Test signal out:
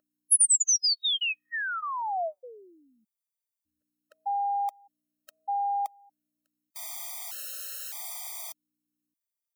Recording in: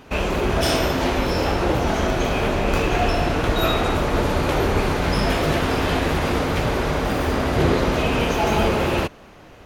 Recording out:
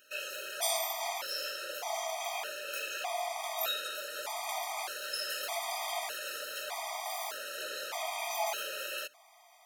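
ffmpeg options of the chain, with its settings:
-af "aeval=exprs='val(0)+0.0251*(sin(2*PI*60*n/s)+sin(2*PI*2*60*n/s)/2+sin(2*PI*3*60*n/s)/3+sin(2*PI*4*60*n/s)/4+sin(2*PI*5*60*n/s)/5)':c=same,highpass=f=680:t=q:w=3.7,aderivative,afftfilt=real='re*gt(sin(2*PI*0.82*pts/sr)*(1-2*mod(floor(b*sr/1024/630),2)),0)':imag='im*gt(sin(2*PI*0.82*pts/sr)*(1-2*mod(floor(b*sr/1024/630),2)),0)':win_size=1024:overlap=0.75"

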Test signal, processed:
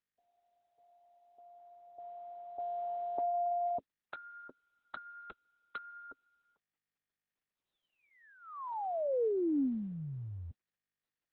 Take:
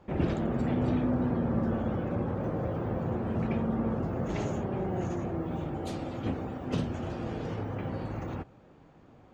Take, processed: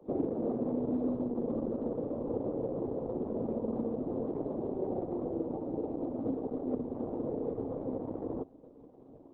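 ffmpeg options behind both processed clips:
-filter_complex "[0:a]highpass=140,equalizer=f=180:t=q:w=4:g=-6,equalizer=f=270:t=q:w=4:g=9,equalizer=f=460:t=q:w=4:g=9,equalizer=f=1.5k:t=q:w=4:g=-9,lowpass=f=3k:w=0.5412,lowpass=f=3k:w=1.3066,acrossover=split=270|1700[a][b][c];[a]acompressor=threshold=-42dB:ratio=4[d];[b]acompressor=threshold=-33dB:ratio=4[e];[c]acompressor=threshold=-56dB:ratio=4[f];[d][e][f]amix=inputs=3:normalize=0,acrossover=split=1000[g][h];[h]acrusher=bits=5:mix=0:aa=0.000001[i];[g][i]amix=inputs=2:normalize=0,volume=1.5dB" -ar 48000 -c:a libopus -b:a 6k

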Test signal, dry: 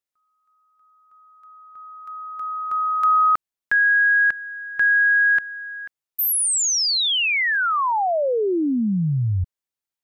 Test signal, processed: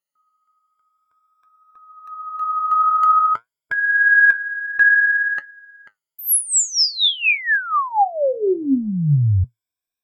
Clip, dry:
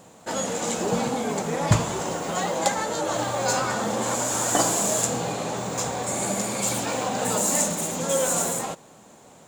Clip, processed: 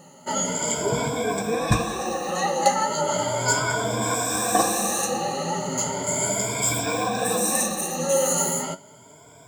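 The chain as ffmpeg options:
-af "afftfilt=real='re*pow(10,20/40*sin(2*PI*(1.7*log(max(b,1)*sr/1024/100)/log(2)-(0.36)*(pts-256)/sr)))':imag='im*pow(10,20/40*sin(2*PI*(1.7*log(max(b,1)*sr/1024/100)/log(2)-(0.36)*(pts-256)/sr)))':win_size=1024:overlap=0.75,flanger=delay=5.6:depth=9.9:regen=63:speed=0.54:shape=triangular,volume=1.5dB"

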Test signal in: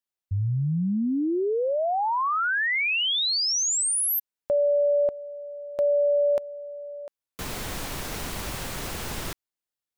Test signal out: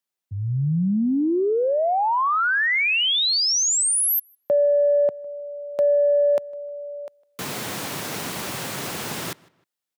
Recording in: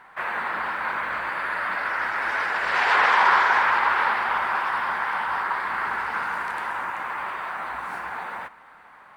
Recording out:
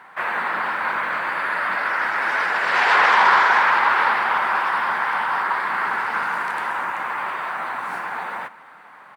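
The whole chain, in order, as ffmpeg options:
-filter_complex "[0:a]acontrast=69,highpass=f=120:w=0.5412,highpass=f=120:w=1.3066,asplit=2[a][b];[b]adelay=155,lowpass=f=3.4k:p=1,volume=-23.5dB,asplit=2[c][d];[d]adelay=155,lowpass=f=3.4k:p=1,volume=0.34[e];[c][e]amix=inputs=2:normalize=0[f];[a][f]amix=inputs=2:normalize=0,volume=-2.5dB"

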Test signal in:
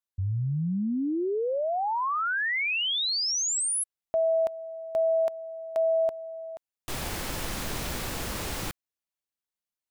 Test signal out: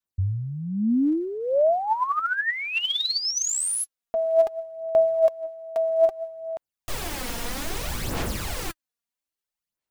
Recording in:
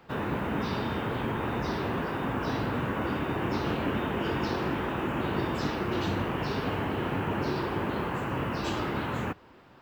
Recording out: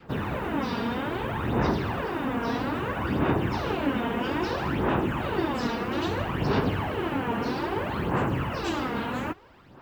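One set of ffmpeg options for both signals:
-af "adynamicequalizer=threshold=0.0224:dfrequency=720:dqfactor=1.4:tfrequency=720:tqfactor=1.4:attack=5:release=100:ratio=0.375:range=1.5:mode=boostabove:tftype=bell,aphaser=in_gain=1:out_gain=1:delay=4.3:decay=0.57:speed=0.61:type=sinusoidal"

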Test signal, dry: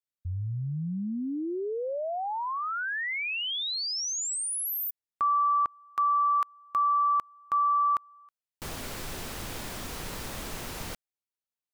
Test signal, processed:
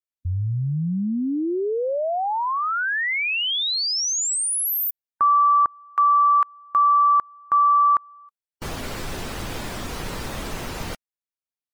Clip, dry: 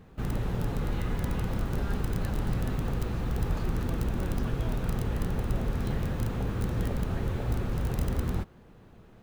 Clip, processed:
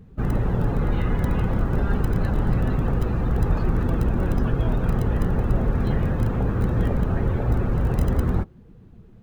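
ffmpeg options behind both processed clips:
-af "afftdn=nr=14:nf=-46,volume=8dB"

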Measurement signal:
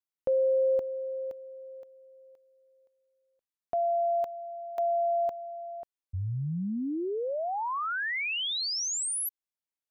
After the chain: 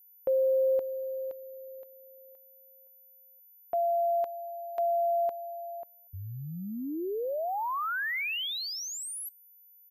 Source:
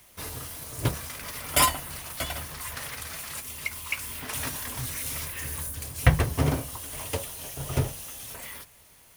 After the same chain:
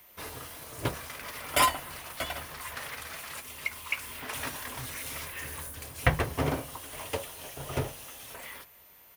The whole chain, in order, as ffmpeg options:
-filter_complex "[0:a]bass=f=250:g=-8,treble=f=4k:g=-7,aeval=exprs='val(0)+0.00178*sin(2*PI*14000*n/s)':c=same,asplit=2[a][b];[b]adelay=239.1,volume=-30dB,highshelf=f=4k:g=-5.38[c];[a][c]amix=inputs=2:normalize=0"

